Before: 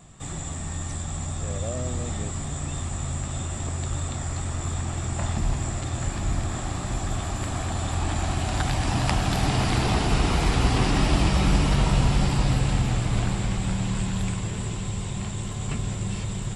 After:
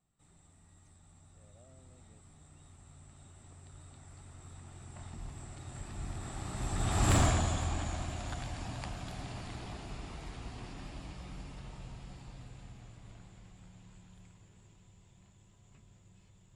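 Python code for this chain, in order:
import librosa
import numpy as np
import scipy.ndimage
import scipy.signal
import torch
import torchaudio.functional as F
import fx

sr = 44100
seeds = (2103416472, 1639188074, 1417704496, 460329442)

y = fx.doppler_pass(x, sr, speed_mps=15, closest_m=1.8, pass_at_s=7.16)
y = np.clip(y, -10.0 ** (-24.5 / 20.0), 10.0 ** (-24.5 / 20.0))
y = F.gain(torch.from_numpy(y), 5.0).numpy()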